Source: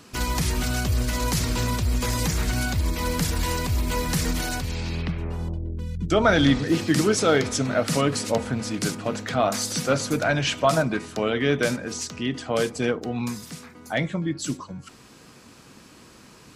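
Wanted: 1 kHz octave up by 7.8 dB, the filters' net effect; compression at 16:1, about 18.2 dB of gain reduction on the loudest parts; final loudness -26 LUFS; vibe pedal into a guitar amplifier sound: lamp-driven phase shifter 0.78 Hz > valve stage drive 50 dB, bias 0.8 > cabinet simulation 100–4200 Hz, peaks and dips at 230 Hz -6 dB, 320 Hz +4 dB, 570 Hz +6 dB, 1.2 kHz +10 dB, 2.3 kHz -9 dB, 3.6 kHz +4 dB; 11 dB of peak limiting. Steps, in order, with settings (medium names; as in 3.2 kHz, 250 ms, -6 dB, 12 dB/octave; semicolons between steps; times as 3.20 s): peaking EQ 1 kHz +4 dB; compression 16:1, threshold -31 dBFS; peak limiter -30.5 dBFS; lamp-driven phase shifter 0.78 Hz; valve stage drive 50 dB, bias 0.8; cabinet simulation 100–4200 Hz, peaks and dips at 230 Hz -6 dB, 320 Hz +4 dB, 570 Hz +6 dB, 1.2 kHz +10 dB, 2.3 kHz -9 dB, 3.6 kHz +4 dB; trim +26 dB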